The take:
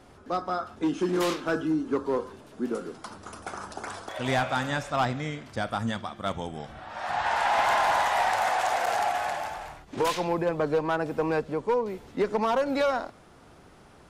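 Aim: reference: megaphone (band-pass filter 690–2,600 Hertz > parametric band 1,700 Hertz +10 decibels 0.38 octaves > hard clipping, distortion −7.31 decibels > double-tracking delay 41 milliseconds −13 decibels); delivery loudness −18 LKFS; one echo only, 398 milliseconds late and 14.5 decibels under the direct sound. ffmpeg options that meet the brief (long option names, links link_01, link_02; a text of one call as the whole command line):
ffmpeg -i in.wav -filter_complex "[0:a]highpass=690,lowpass=2600,equalizer=frequency=1700:width_type=o:width=0.38:gain=10,aecho=1:1:398:0.188,asoftclip=type=hard:threshold=-27.5dB,asplit=2[link_01][link_02];[link_02]adelay=41,volume=-13dB[link_03];[link_01][link_03]amix=inputs=2:normalize=0,volume=14.5dB" out.wav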